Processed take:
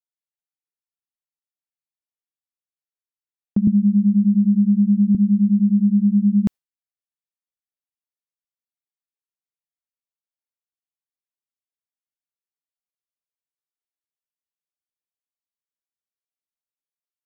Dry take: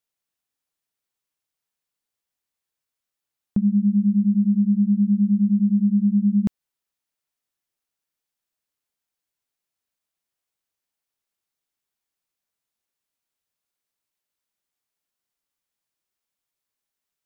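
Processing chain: gate with hold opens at -15 dBFS; 3.67–5.15 s: three bands compressed up and down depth 70%; trim +2.5 dB

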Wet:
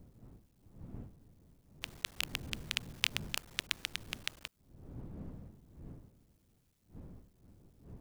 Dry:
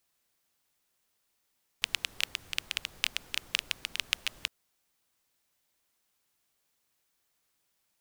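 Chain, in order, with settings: cycle switcher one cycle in 3, muted; wind noise 180 Hz -50 dBFS; trim -1.5 dB

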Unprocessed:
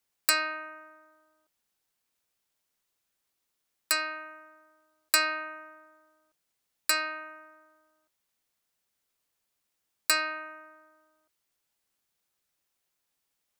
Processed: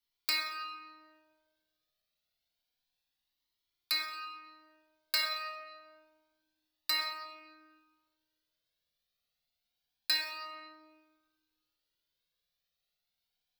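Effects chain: graphic EQ 250/1000/2000/4000/8000 Hz -5/-5/-3/+11/-12 dB; reverberation RT60 1.4 s, pre-delay 4 ms, DRR -0.5 dB; Shepard-style flanger rising 0.28 Hz; trim -3 dB

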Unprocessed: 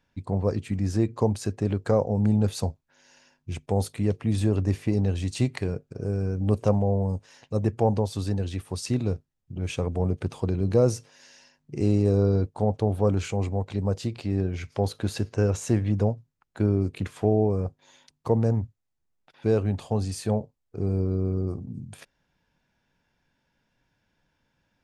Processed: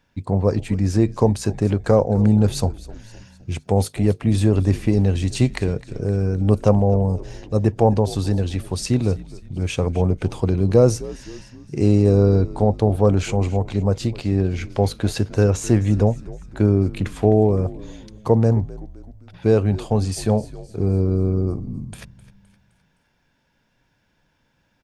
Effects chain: frequency-shifting echo 258 ms, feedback 52%, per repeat -73 Hz, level -18 dB; trim +6.5 dB

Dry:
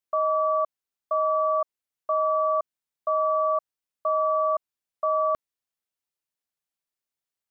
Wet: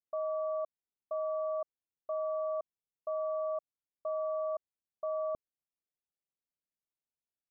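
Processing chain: Gaussian low-pass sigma 11 samples; trim -4 dB

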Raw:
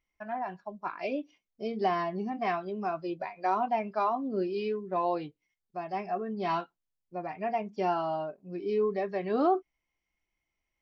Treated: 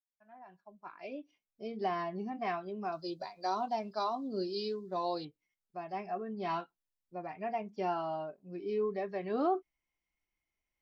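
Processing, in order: fade-in on the opening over 2.07 s; 2.92–5.25 s: resonant high shelf 3.2 kHz +9.5 dB, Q 3; trim -5 dB

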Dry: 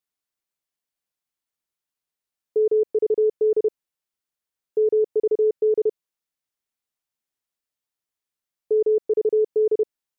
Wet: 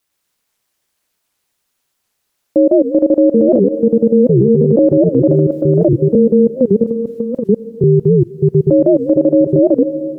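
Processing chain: 3.59–4.79 s: high-pass 370 Hz 24 dB/octave; 5.33–5.85 s: compressor with a negative ratio -27 dBFS, ratio -0.5; ever faster or slower copies 118 ms, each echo -4 st, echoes 2; ring modulator 120 Hz; reverberation RT60 2.5 s, pre-delay 88 ms, DRR 16 dB; loudness maximiser +20 dB; warped record 78 rpm, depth 250 cents; trim -1.5 dB

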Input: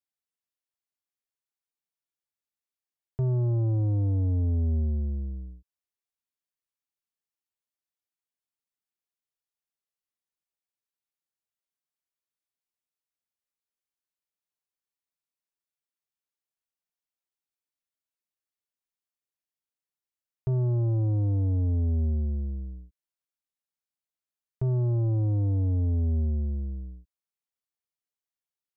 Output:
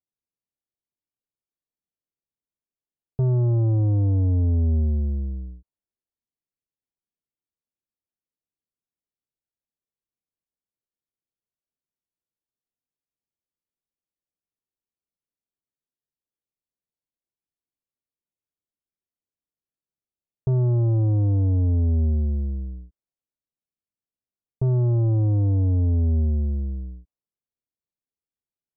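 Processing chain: level-controlled noise filter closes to 450 Hz; trim +5 dB

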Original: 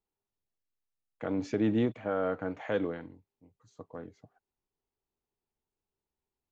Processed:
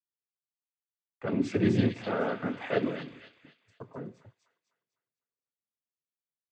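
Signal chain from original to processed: 1.25–3.97 s: peaking EQ 2.7 kHz +7.5 dB 1.8 oct; two-slope reverb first 0.39 s, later 3.8 s, from -20 dB, DRR 13 dB; noise-vocoded speech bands 16; gate -58 dBFS, range -22 dB; bass shelf 170 Hz +12 dB; feedback echo behind a high-pass 251 ms, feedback 39%, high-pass 2.8 kHz, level -3 dB; trim -1 dB

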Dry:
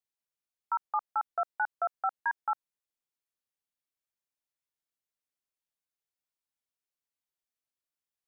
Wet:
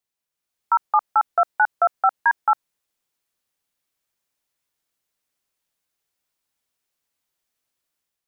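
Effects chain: level rider gain up to 6.5 dB; trim +6 dB

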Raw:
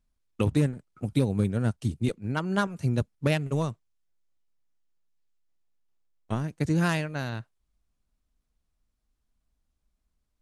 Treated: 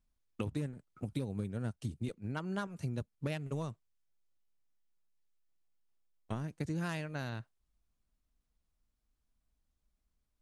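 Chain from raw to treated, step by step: compression 3:1, threshold -32 dBFS, peak gain reduction 10.5 dB; trim -4 dB

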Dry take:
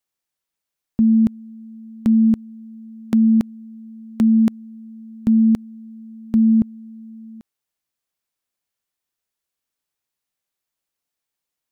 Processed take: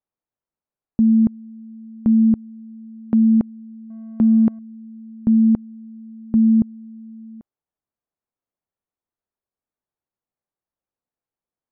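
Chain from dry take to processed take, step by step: 3.90–4.59 s: companding laws mixed up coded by mu; low-pass 1 kHz 12 dB/octave

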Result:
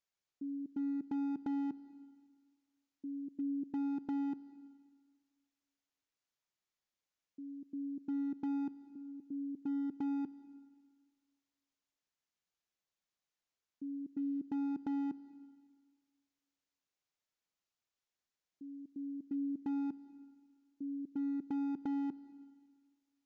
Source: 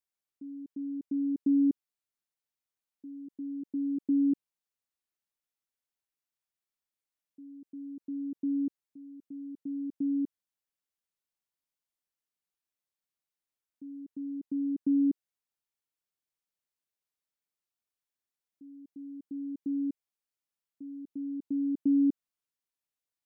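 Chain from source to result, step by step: compression 10:1, threshold -33 dBFS, peak gain reduction 11 dB; overload inside the chain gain 34 dB; algorithmic reverb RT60 1.6 s, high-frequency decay 0.95×, pre-delay 105 ms, DRR 15.5 dB; resampled via 16 kHz; trim +1.5 dB

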